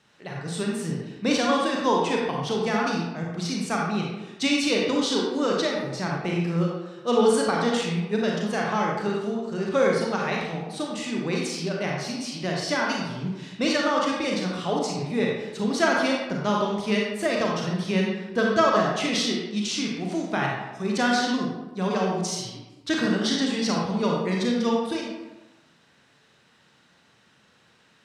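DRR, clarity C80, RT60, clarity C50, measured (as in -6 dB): -2.5 dB, 3.0 dB, 1.1 s, -0.5 dB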